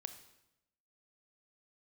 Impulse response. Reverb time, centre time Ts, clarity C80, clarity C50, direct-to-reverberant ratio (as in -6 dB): 0.90 s, 10 ms, 13.0 dB, 11.0 dB, 9.0 dB